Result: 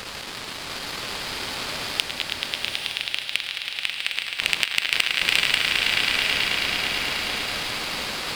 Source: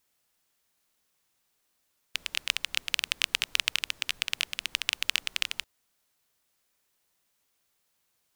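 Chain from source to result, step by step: Doppler pass-by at 2.96, 26 m/s, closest 12 m; in parallel at -4 dB: requantised 6-bit, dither triangular; on the sum: sample leveller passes 2; flipped gate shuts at -5 dBFS, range -36 dB; downsampling 11025 Hz; on a send: swelling echo 0.108 s, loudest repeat 5, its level -12 dB; on the sum: sample leveller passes 3; bloom reverb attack 0.9 s, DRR 2.5 dB; gain +3.5 dB

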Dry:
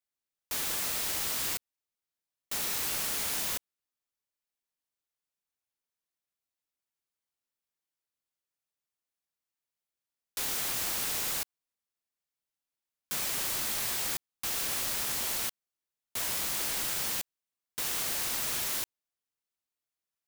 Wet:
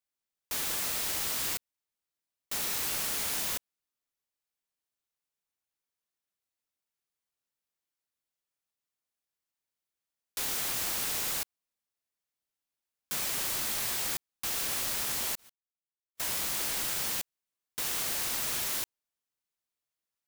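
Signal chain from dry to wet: 15.35–16.2 gate -28 dBFS, range -58 dB

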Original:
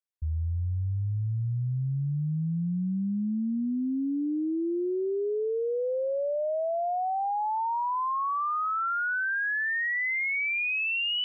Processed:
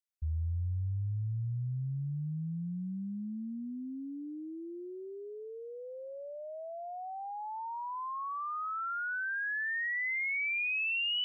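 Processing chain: bell 460 Hz -14 dB 2.7 oct; gain -1.5 dB

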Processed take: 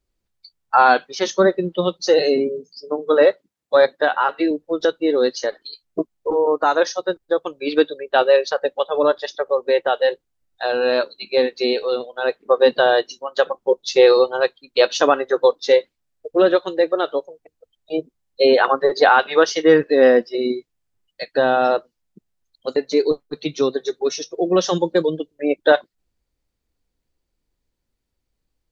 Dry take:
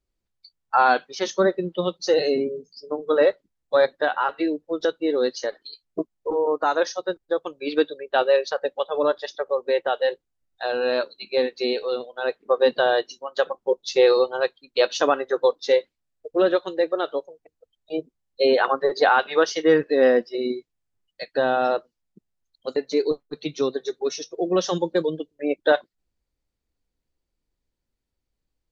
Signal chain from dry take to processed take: 2.07–4.51 HPF 140 Hz 12 dB/oct; gain +4.5 dB

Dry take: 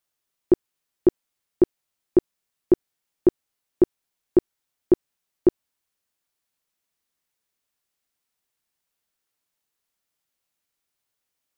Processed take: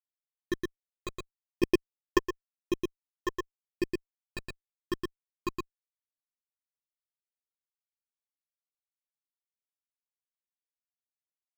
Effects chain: fuzz box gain 33 dB, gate -38 dBFS; phaser stages 12, 0.82 Hz, lowest notch 220–1500 Hz; echo 0.117 s -3 dB; 1.63–2.18 transient shaper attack +10 dB, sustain -4 dB; gain -9 dB

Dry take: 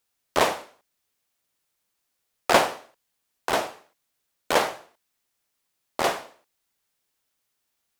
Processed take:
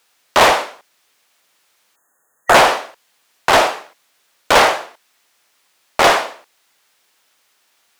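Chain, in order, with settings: spectral delete 1.96–2.55, 1900–6300 Hz; overdrive pedal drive 25 dB, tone 4200 Hz, clips at -3.5 dBFS; gain +2.5 dB

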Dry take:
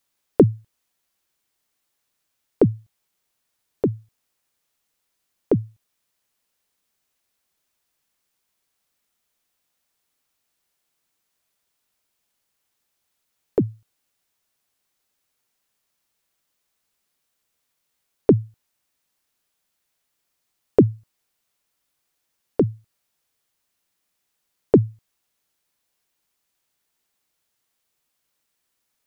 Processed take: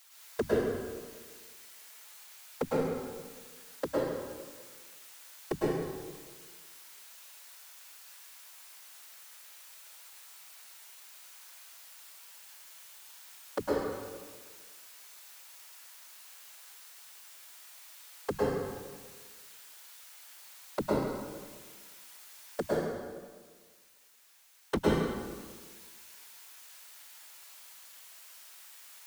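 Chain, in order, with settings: HPF 880 Hz 12 dB/oct; 22.66–24.79 sample leveller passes 5; limiter -25 dBFS, peak gain reduction 11.5 dB; compressor 4:1, threshold -45 dBFS, peak gain reduction 14.5 dB; hard clip -32.5 dBFS, distortion -16 dB; whisperiser; soft clip -38 dBFS, distortion -10 dB; plate-style reverb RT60 1.5 s, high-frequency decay 0.8×, pre-delay 95 ms, DRR -7 dB; gain +16.5 dB

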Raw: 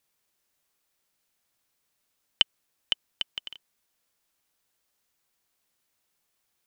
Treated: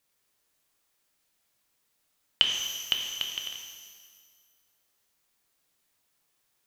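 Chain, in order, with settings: shimmer reverb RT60 1.6 s, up +12 st, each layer -8 dB, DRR 2 dB

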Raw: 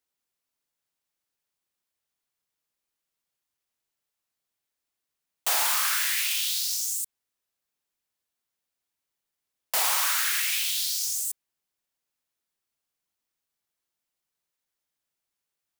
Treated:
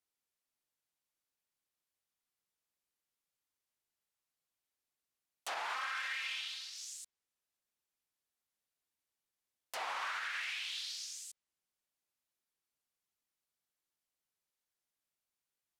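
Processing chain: 5.75–6.7 comb 3.8 ms, depth 88%; treble ducked by the level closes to 2300 Hz, closed at -22 dBFS; limiter -24.5 dBFS, peak gain reduction 10 dB; gain -5.5 dB

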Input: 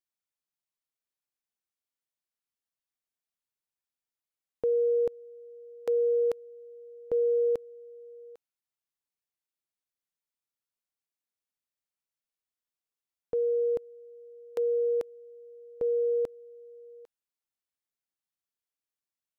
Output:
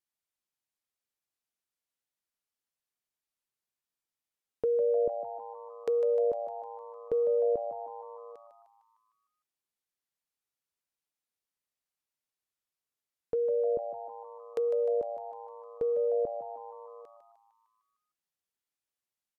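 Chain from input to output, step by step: treble ducked by the level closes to 570 Hz, closed at -28 dBFS; frequency-shifting echo 0.152 s, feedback 57%, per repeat +110 Hz, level -10 dB

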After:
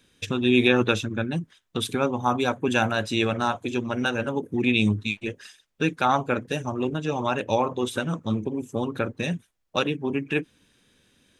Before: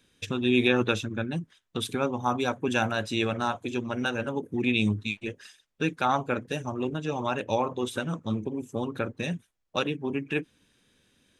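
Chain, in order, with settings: 2.12–2.97 notch 5600 Hz, Q 11; gain +3.5 dB

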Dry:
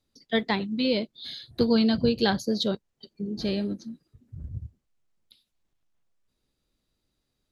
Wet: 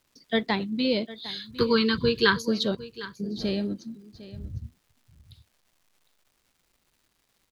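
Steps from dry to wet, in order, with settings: 1.29–2.42 EQ curve 150 Hz 0 dB, 260 Hz -5 dB, 450 Hz +4 dB, 710 Hz -29 dB, 1000 Hz +12 dB, 5700 Hz +1 dB; crackle 580/s -56 dBFS; echo 0.755 s -17 dB

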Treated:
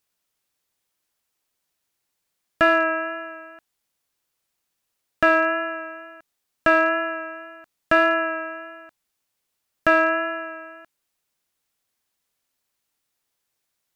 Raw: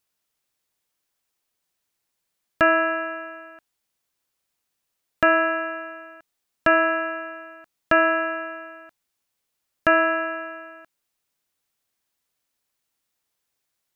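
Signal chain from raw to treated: in parallel at -6 dB: overloaded stage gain 14 dB; on the sum: wow and flutter 17 cents; gain -2.5 dB

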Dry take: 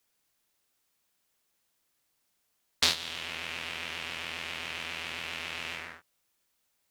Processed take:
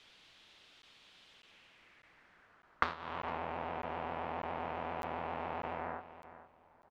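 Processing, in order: compressor 6:1, threshold -46 dBFS, peak gain reduction 24.5 dB; on a send: feedback echo 0.457 s, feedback 22%, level -14 dB; on the sum: low-pass sweep 3400 Hz -> 820 Hz, 1.31–3.47; crackling interface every 0.60 s, samples 512, zero, from 0.82; gain +16.5 dB

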